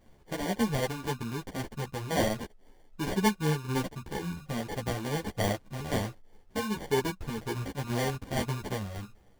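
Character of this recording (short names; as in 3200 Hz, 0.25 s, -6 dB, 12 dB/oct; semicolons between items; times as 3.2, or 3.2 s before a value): a quantiser's noise floor 12-bit, dither none; tremolo saw down 1.9 Hz, depth 40%; aliases and images of a low sample rate 1300 Hz, jitter 0%; a shimmering, thickened sound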